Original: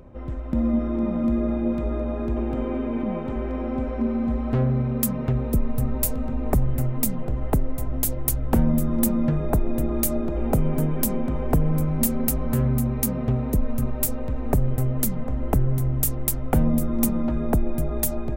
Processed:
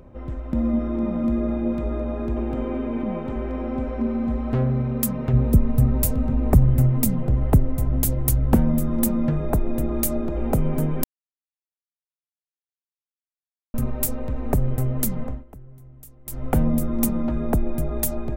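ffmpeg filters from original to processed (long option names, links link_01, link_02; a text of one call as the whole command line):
ffmpeg -i in.wav -filter_complex "[0:a]asettb=1/sr,asplit=3[link_01][link_02][link_03];[link_01]atrim=end=5.334[link_04];[link_02]atrim=start=5.33:end=8.56,asetpts=PTS-STARTPTS,afade=type=in:duration=0.004:curve=qsin,afade=type=out:start_time=3.226:duration=0.004:curve=qsin,equalizer=frequency=100:width=0.48:gain=8.5[link_05];[link_03]atrim=start=8.556[link_06];[link_04][link_05]acrossfade=duration=0.004:curve1=hsin:curve2=qsin[link_07];[link_07][link_06]acrossfade=duration=0.004:curve1=qsin:curve2=hsin,asplit=5[link_08][link_09][link_10][link_11][link_12];[link_08]atrim=end=11.04,asetpts=PTS-STARTPTS,afade=type=out:start_time=11.036:duration=0.004:curve=hsin[link_13];[link_09]atrim=start=11.04:end=13.74,asetpts=PTS-STARTPTS,volume=0[link_14];[link_10]atrim=start=13.74:end=15.44,asetpts=PTS-STARTPTS,afade=type=in:duration=0.004:curve=hsin,afade=type=out:start_time=1.51:duration=0.19:silence=0.0749894[link_15];[link_11]atrim=start=15.44:end=16.25,asetpts=PTS-STARTPTS,volume=-22.5dB[link_16];[link_12]atrim=start=16.25,asetpts=PTS-STARTPTS,afade=type=in:duration=0.19:silence=0.0749894[link_17];[link_13][link_14][link_15][link_16][link_17]concat=n=5:v=0:a=1" out.wav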